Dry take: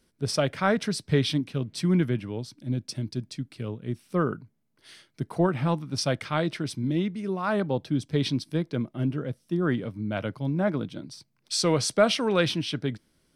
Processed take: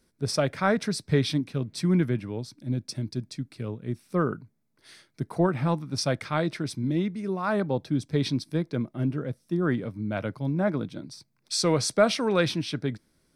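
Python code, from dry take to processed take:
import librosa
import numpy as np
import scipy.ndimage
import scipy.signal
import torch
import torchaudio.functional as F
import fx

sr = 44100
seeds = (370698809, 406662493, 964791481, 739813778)

y = fx.peak_eq(x, sr, hz=3000.0, db=-8.0, octaves=0.26)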